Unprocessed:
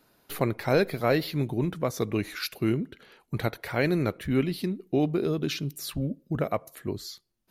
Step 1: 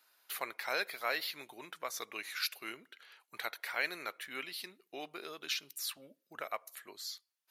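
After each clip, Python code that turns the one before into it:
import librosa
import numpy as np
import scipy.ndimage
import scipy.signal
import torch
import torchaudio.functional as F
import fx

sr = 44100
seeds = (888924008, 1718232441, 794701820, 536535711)

y = scipy.signal.sosfilt(scipy.signal.butter(2, 1200.0, 'highpass', fs=sr, output='sos'), x)
y = F.gain(torch.from_numpy(y), -2.0).numpy()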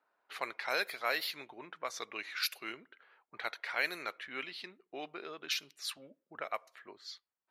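y = fx.env_lowpass(x, sr, base_hz=990.0, full_db=-33.0)
y = F.gain(torch.from_numpy(y), 1.5).numpy()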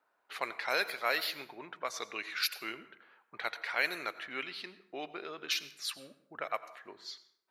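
y = fx.rev_plate(x, sr, seeds[0], rt60_s=0.72, hf_ratio=0.6, predelay_ms=75, drr_db=14.5)
y = F.gain(torch.from_numpy(y), 2.0).numpy()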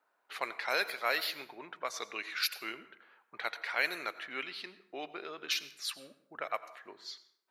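y = fx.highpass(x, sr, hz=180.0, slope=6)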